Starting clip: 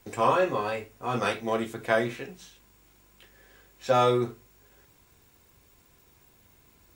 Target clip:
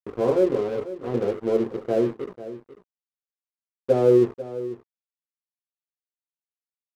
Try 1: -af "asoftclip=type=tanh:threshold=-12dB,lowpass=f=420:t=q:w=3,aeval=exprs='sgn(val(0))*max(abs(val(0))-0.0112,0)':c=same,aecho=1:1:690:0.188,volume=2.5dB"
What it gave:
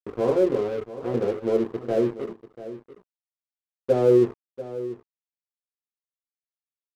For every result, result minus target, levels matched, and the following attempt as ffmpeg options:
soft clip: distortion +21 dB; echo 0.196 s late
-af "asoftclip=type=tanh:threshold=-0.5dB,lowpass=f=420:t=q:w=3,aeval=exprs='sgn(val(0))*max(abs(val(0))-0.0112,0)':c=same,aecho=1:1:690:0.188,volume=2.5dB"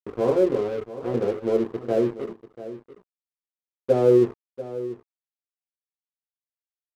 echo 0.196 s late
-af "asoftclip=type=tanh:threshold=-0.5dB,lowpass=f=420:t=q:w=3,aeval=exprs='sgn(val(0))*max(abs(val(0))-0.0112,0)':c=same,aecho=1:1:494:0.188,volume=2.5dB"

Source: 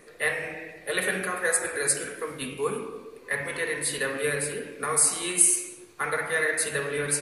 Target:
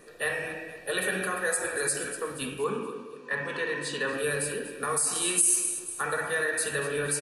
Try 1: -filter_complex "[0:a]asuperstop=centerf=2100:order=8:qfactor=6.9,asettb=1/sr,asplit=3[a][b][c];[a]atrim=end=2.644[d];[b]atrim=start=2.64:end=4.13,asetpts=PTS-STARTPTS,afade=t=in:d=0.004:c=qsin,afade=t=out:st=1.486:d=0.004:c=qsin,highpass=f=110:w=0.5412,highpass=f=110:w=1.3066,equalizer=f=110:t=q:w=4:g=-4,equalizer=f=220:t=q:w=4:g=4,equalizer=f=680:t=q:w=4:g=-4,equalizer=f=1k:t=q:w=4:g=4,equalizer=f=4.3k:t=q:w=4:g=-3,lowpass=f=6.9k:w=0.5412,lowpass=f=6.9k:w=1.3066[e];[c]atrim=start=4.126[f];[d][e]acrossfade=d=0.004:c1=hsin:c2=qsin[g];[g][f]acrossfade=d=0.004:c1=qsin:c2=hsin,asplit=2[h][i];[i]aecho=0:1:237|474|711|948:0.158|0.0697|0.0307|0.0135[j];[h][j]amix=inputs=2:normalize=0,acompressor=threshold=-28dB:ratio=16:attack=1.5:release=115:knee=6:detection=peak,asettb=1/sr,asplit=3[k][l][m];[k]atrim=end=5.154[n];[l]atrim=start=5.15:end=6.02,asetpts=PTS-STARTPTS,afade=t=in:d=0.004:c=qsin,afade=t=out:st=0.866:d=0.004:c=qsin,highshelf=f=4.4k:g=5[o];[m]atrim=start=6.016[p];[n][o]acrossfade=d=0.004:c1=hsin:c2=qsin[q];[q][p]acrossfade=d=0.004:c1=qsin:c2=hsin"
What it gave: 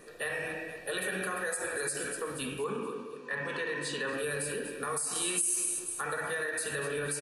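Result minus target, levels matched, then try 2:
compressor: peak gain reduction +7.5 dB
-filter_complex "[0:a]asuperstop=centerf=2100:order=8:qfactor=6.9,asettb=1/sr,asplit=3[a][b][c];[a]atrim=end=2.644[d];[b]atrim=start=2.64:end=4.13,asetpts=PTS-STARTPTS,afade=t=in:d=0.004:c=qsin,afade=t=out:st=1.486:d=0.004:c=qsin,highpass=f=110:w=0.5412,highpass=f=110:w=1.3066,equalizer=f=110:t=q:w=4:g=-4,equalizer=f=220:t=q:w=4:g=4,equalizer=f=680:t=q:w=4:g=-4,equalizer=f=1k:t=q:w=4:g=4,equalizer=f=4.3k:t=q:w=4:g=-3,lowpass=f=6.9k:w=0.5412,lowpass=f=6.9k:w=1.3066[e];[c]atrim=start=4.126[f];[d][e]acrossfade=d=0.004:c1=hsin:c2=qsin[g];[g][f]acrossfade=d=0.004:c1=qsin:c2=hsin,asplit=2[h][i];[i]aecho=0:1:237|474|711|948:0.158|0.0697|0.0307|0.0135[j];[h][j]amix=inputs=2:normalize=0,acompressor=threshold=-20dB:ratio=16:attack=1.5:release=115:knee=6:detection=peak,asettb=1/sr,asplit=3[k][l][m];[k]atrim=end=5.154[n];[l]atrim=start=5.15:end=6.02,asetpts=PTS-STARTPTS,afade=t=in:d=0.004:c=qsin,afade=t=out:st=0.866:d=0.004:c=qsin,highshelf=f=4.4k:g=5[o];[m]atrim=start=6.016[p];[n][o]acrossfade=d=0.004:c1=hsin:c2=qsin[q];[q][p]acrossfade=d=0.004:c1=qsin:c2=hsin"

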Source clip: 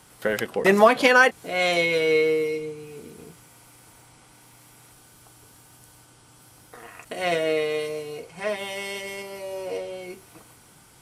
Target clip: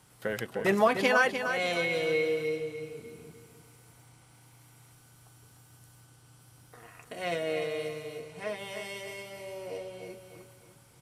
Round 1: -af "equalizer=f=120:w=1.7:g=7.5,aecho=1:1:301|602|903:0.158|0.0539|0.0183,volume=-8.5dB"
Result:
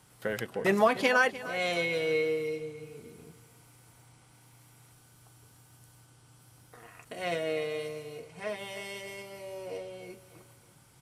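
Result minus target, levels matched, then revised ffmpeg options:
echo-to-direct -8 dB
-af "equalizer=f=120:w=1.7:g=7.5,aecho=1:1:301|602|903|1204:0.398|0.135|0.046|0.0156,volume=-8.5dB"

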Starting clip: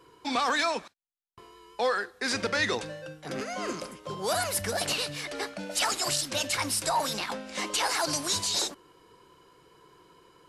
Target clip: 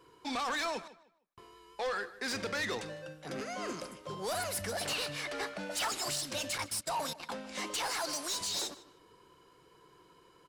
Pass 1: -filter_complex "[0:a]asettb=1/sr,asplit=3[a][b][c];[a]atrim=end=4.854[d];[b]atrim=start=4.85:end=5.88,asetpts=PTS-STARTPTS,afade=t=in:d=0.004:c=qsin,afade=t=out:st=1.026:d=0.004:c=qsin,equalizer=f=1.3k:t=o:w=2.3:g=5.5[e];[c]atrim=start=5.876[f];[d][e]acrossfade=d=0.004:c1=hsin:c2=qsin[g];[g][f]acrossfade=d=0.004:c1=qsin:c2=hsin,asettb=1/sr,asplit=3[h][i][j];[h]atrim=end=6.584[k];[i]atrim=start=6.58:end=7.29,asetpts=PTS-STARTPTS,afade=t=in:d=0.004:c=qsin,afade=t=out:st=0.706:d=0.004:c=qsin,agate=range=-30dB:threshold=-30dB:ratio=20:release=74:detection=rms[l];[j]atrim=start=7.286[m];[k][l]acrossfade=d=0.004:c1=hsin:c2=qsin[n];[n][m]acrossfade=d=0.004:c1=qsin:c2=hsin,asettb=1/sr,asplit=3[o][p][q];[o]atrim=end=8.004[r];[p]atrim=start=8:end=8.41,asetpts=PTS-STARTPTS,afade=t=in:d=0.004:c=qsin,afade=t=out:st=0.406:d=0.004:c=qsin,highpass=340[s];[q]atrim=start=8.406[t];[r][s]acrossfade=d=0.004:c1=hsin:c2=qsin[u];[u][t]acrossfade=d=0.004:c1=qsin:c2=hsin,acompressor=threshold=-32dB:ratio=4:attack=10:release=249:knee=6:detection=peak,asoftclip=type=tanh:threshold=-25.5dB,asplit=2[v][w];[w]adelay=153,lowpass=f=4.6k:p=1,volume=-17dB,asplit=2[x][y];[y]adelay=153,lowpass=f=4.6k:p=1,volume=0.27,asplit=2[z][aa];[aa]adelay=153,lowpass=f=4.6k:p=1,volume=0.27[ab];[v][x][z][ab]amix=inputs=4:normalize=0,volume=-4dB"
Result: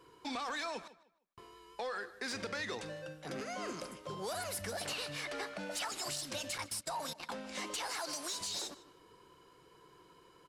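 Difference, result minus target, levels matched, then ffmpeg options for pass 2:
compressor: peak gain reduction +11.5 dB
-filter_complex "[0:a]asettb=1/sr,asplit=3[a][b][c];[a]atrim=end=4.854[d];[b]atrim=start=4.85:end=5.88,asetpts=PTS-STARTPTS,afade=t=in:d=0.004:c=qsin,afade=t=out:st=1.026:d=0.004:c=qsin,equalizer=f=1.3k:t=o:w=2.3:g=5.5[e];[c]atrim=start=5.876[f];[d][e]acrossfade=d=0.004:c1=hsin:c2=qsin[g];[g][f]acrossfade=d=0.004:c1=qsin:c2=hsin,asettb=1/sr,asplit=3[h][i][j];[h]atrim=end=6.584[k];[i]atrim=start=6.58:end=7.29,asetpts=PTS-STARTPTS,afade=t=in:d=0.004:c=qsin,afade=t=out:st=0.706:d=0.004:c=qsin,agate=range=-30dB:threshold=-30dB:ratio=20:release=74:detection=rms[l];[j]atrim=start=7.286[m];[k][l]acrossfade=d=0.004:c1=hsin:c2=qsin[n];[n][m]acrossfade=d=0.004:c1=qsin:c2=hsin,asettb=1/sr,asplit=3[o][p][q];[o]atrim=end=8.004[r];[p]atrim=start=8:end=8.41,asetpts=PTS-STARTPTS,afade=t=in:d=0.004:c=qsin,afade=t=out:st=0.406:d=0.004:c=qsin,highpass=340[s];[q]atrim=start=8.406[t];[r][s]acrossfade=d=0.004:c1=hsin:c2=qsin[u];[u][t]acrossfade=d=0.004:c1=qsin:c2=hsin,asoftclip=type=tanh:threshold=-25.5dB,asplit=2[v][w];[w]adelay=153,lowpass=f=4.6k:p=1,volume=-17dB,asplit=2[x][y];[y]adelay=153,lowpass=f=4.6k:p=1,volume=0.27,asplit=2[z][aa];[aa]adelay=153,lowpass=f=4.6k:p=1,volume=0.27[ab];[v][x][z][ab]amix=inputs=4:normalize=0,volume=-4dB"

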